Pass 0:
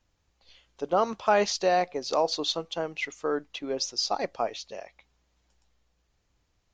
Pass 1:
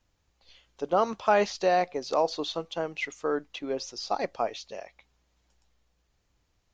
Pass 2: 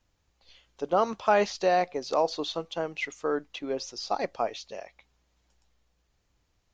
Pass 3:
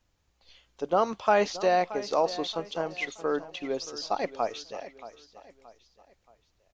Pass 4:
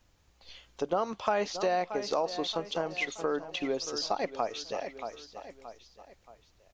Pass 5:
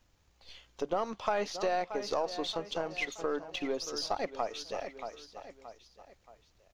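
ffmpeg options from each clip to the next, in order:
ffmpeg -i in.wav -filter_complex "[0:a]acrossover=split=2900[link_01][link_02];[link_02]acompressor=threshold=-37dB:ratio=4:attack=1:release=60[link_03];[link_01][link_03]amix=inputs=2:normalize=0" out.wav
ffmpeg -i in.wav -af anull out.wav
ffmpeg -i in.wav -af "aecho=1:1:626|1252|1878:0.168|0.0655|0.0255" out.wav
ffmpeg -i in.wav -af "acompressor=threshold=-37dB:ratio=2.5,volume=6dB" out.wav
ffmpeg -i in.wav -af "aeval=exprs='if(lt(val(0),0),0.708*val(0),val(0))':channel_layout=same,volume=-1dB" out.wav

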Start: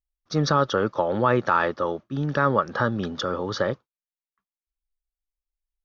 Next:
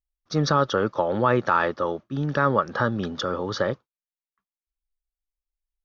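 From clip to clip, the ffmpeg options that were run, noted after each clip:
ffmpeg -i in.wav -af anull out.wav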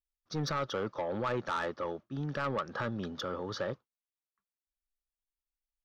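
ffmpeg -i in.wav -af "asoftclip=type=tanh:threshold=-18dB,volume=-8.5dB" out.wav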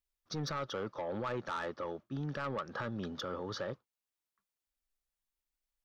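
ffmpeg -i in.wav -af "alimiter=level_in=9.5dB:limit=-24dB:level=0:latency=1:release=429,volume=-9.5dB,volume=2.5dB" out.wav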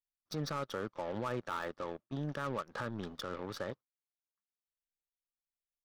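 ffmpeg -i in.wav -af "aeval=exprs='0.0299*(cos(1*acos(clip(val(0)/0.0299,-1,1)))-cos(1*PI/2))+0.00422*(cos(2*acos(clip(val(0)/0.0299,-1,1)))-cos(2*PI/2))+0.00596*(cos(3*acos(clip(val(0)/0.0299,-1,1)))-cos(3*PI/2))+0.00237*(cos(4*acos(clip(val(0)/0.0299,-1,1)))-cos(4*PI/2))+0.00119*(cos(7*acos(clip(val(0)/0.0299,-1,1)))-cos(7*PI/2))':channel_layout=same,volume=1dB" out.wav

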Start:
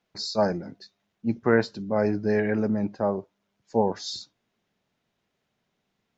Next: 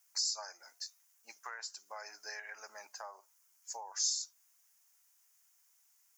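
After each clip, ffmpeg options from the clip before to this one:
ffmpeg -i in.wav -af "highpass=frequency=930:width=0.5412,highpass=frequency=930:width=1.3066,acompressor=threshold=-41dB:ratio=6,aexciter=amount=14.9:drive=5.3:freq=5700,volume=-2.5dB" out.wav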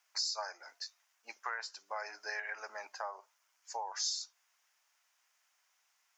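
ffmpeg -i in.wav -filter_complex "[0:a]acrossover=split=220 4600:gain=0.178 1 0.1[link_01][link_02][link_03];[link_01][link_02][link_03]amix=inputs=3:normalize=0,volume=6.5dB" out.wav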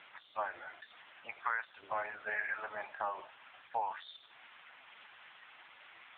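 ffmpeg -i in.wav -af "aeval=exprs='val(0)+0.5*0.00531*sgn(val(0))':channel_layout=same,highpass=280,volume=4dB" -ar 8000 -c:a libopencore_amrnb -b:a 4750 out.amr

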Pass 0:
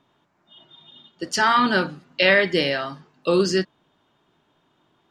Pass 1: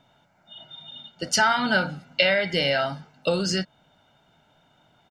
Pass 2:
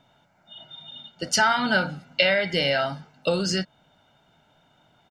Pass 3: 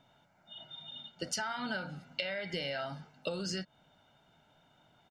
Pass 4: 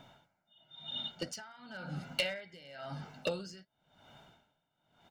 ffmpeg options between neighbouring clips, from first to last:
ffmpeg -i in.wav -af "acompressor=threshold=-22dB:ratio=5,bandreject=frequency=1200:width=14,aecho=1:1:1.4:0.64,volume=3dB" out.wav
ffmpeg -i in.wav -af anull out.wav
ffmpeg -i in.wav -af "acompressor=threshold=-28dB:ratio=12,volume=-5dB" out.wav
ffmpeg -i in.wav -af "flanger=delay=0:depth=6.5:regen=-79:speed=0.74:shape=triangular,volume=33.5dB,asoftclip=hard,volume=-33.5dB,aeval=exprs='val(0)*pow(10,-26*(0.5-0.5*cos(2*PI*0.96*n/s))/20)':channel_layout=same,volume=13.5dB" out.wav

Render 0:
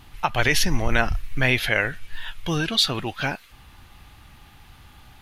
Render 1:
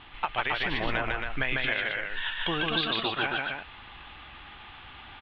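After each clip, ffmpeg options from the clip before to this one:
ffmpeg -i in.wav -filter_complex "[0:a]firequalizer=gain_entry='entry(130,0);entry(320,8);entry(1100,13);entry(3400,14);entry(6100,-26)':delay=0.05:min_phase=1,acompressor=threshold=-18dB:ratio=12,asplit=2[link_01][link_02];[link_02]aecho=0:1:148.7|271.1:0.794|0.562[link_03];[link_01][link_03]amix=inputs=2:normalize=0,volume=-8.5dB" out.wav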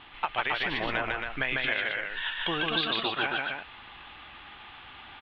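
ffmpeg -i in.wav -af "lowshelf=frequency=120:gain=-9" out.wav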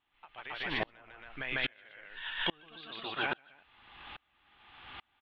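ffmpeg -i in.wav -filter_complex "[0:a]asplit=2[link_01][link_02];[link_02]alimiter=limit=-23.5dB:level=0:latency=1:release=73,volume=-2dB[link_03];[link_01][link_03]amix=inputs=2:normalize=0,aeval=exprs='val(0)*pow(10,-34*if(lt(mod(-1.2*n/s,1),2*abs(-1.2)/1000),1-mod(-1.2*n/s,1)/(2*abs(-1.2)/1000),(mod(-1.2*n/s,1)-2*abs(-1.2)/1000)/(1-2*abs(-1.2)/1000))/20)':channel_layout=same,volume=-3dB" out.wav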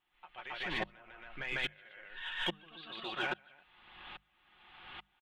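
ffmpeg -i in.wav -filter_complex "[0:a]bandreject=frequency=50:width_type=h:width=6,bandreject=frequency=100:width_type=h:width=6,bandreject=frequency=150:width_type=h:width=6,bandreject=frequency=200:width_type=h:width=6,aecho=1:1:5.5:0.46,asplit=2[link_01][link_02];[link_02]asoftclip=type=tanh:threshold=-31.5dB,volume=-4dB[link_03];[link_01][link_03]amix=inputs=2:normalize=0,volume=-6dB" out.wav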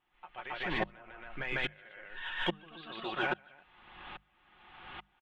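ffmpeg -i in.wav -af "lowpass=frequency=1700:poles=1,volume=5.5dB" out.wav

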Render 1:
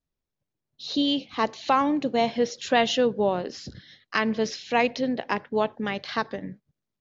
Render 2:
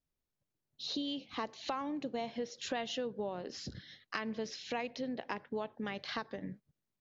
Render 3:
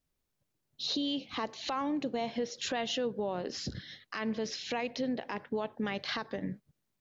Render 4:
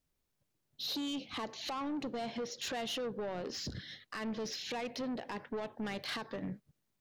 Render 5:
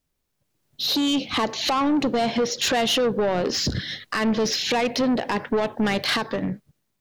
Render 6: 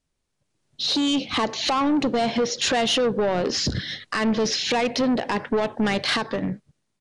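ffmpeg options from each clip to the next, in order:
ffmpeg -i in.wav -af "acompressor=threshold=-33dB:ratio=4,volume=-3.5dB" out.wav
ffmpeg -i in.wav -af "alimiter=level_in=6.5dB:limit=-24dB:level=0:latency=1:release=25,volume=-6.5dB,volume=6dB" out.wav
ffmpeg -i in.wav -af "asoftclip=type=tanh:threshold=-33.5dB" out.wav
ffmpeg -i in.wav -af "dynaudnorm=framelen=140:gausssize=11:maxgain=11.5dB,volume=5dB" out.wav
ffmpeg -i in.wav -af "aresample=22050,aresample=44100" out.wav

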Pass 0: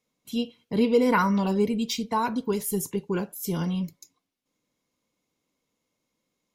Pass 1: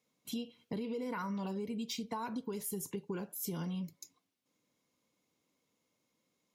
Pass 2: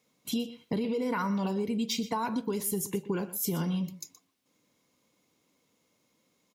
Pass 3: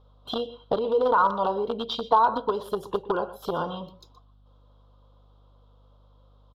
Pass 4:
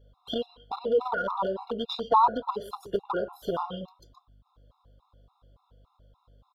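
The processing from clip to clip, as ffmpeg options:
ffmpeg -i in.wav -af "highpass=77,alimiter=limit=-19dB:level=0:latency=1:release=80,acompressor=threshold=-36dB:ratio=5,volume=-1dB" out.wav
ffmpeg -i in.wav -af "aecho=1:1:122:0.168,volume=8dB" out.wav
ffmpeg -i in.wav -filter_complex "[0:a]aeval=exprs='val(0)+0.00178*(sin(2*PI*50*n/s)+sin(2*PI*2*50*n/s)/2+sin(2*PI*3*50*n/s)/3+sin(2*PI*4*50*n/s)/4+sin(2*PI*5*50*n/s)/5)':channel_layout=same,asplit=2[link_01][link_02];[link_02]acrusher=bits=3:mix=0:aa=0.000001,volume=-10dB[link_03];[link_01][link_03]amix=inputs=2:normalize=0,firequalizer=gain_entry='entry(120,0);entry(180,-9);entry(510,12);entry(1300,14);entry(2100,-22);entry(3300,8);entry(6500,-22)':delay=0.05:min_phase=1" out.wav
ffmpeg -i in.wav -af "afftfilt=real='re*gt(sin(2*PI*3.5*pts/sr)*(1-2*mod(floor(b*sr/1024/700),2)),0)':imag='im*gt(sin(2*PI*3.5*pts/sr)*(1-2*mod(floor(b*sr/1024/700),2)),0)':win_size=1024:overlap=0.75" out.wav

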